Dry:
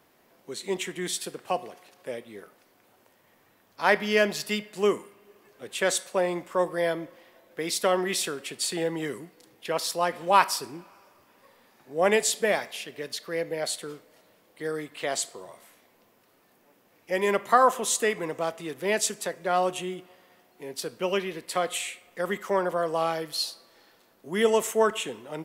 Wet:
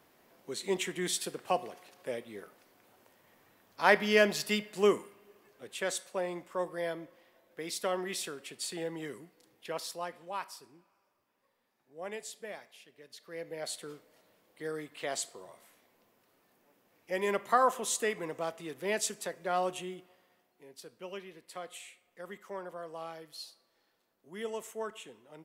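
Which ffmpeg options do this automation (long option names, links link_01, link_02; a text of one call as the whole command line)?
ffmpeg -i in.wav -af "volume=10.5dB,afade=type=out:start_time=4.93:duration=0.93:silence=0.446684,afade=type=out:start_time=9.71:duration=0.63:silence=0.316228,afade=type=in:start_time=13.07:duration=0.83:silence=0.237137,afade=type=out:start_time=19.7:duration=1:silence=0.334965" out.wav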